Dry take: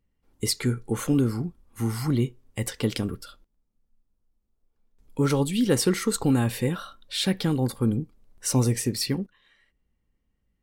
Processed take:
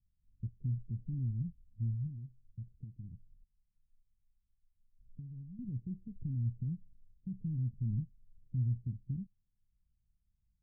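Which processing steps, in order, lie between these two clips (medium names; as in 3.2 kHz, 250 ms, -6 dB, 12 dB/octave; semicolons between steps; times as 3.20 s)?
peak limiter -18.5 dBFS, peak gain reduction 8.5 dB; 2.06–5.59 s: compression, threshold -35 dBFS, peak gain reduction 12 dB; inverse Chebyshev low-pass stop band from 950 Hz, stop band 80 dB; trim -3.5 dB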